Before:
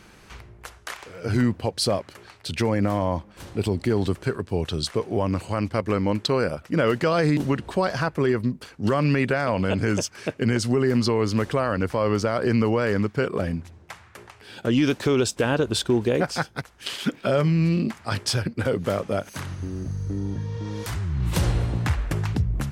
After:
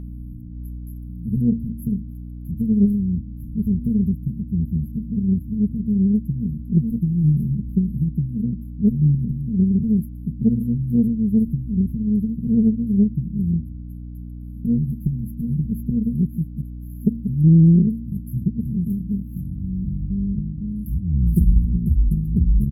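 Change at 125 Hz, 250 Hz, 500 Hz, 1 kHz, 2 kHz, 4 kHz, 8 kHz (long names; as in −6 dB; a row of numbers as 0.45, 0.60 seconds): +5.5 dB, +6.0 dB, −15.0 dB, below −40 dB, below −40 dB, below −40 dB, below −20 dB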